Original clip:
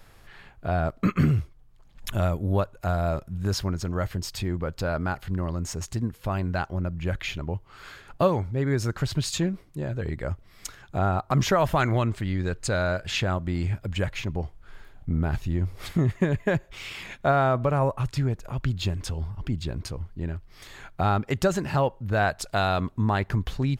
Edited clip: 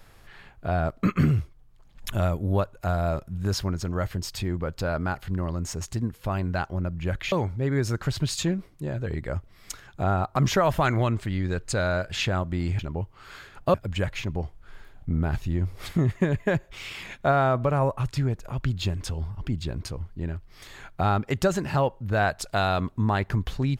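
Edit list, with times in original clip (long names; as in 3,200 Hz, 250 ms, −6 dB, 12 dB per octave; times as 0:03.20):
0:07.32–0:08.27: move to 0:13.74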